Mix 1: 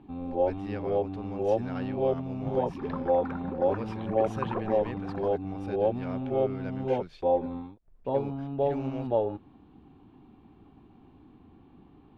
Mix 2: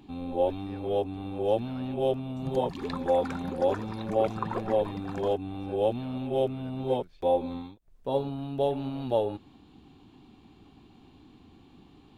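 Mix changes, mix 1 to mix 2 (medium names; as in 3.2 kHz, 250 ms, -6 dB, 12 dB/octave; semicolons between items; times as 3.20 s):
speech -11.0 dB; background: remove low-pass 1.7 kHz 12 dB/octave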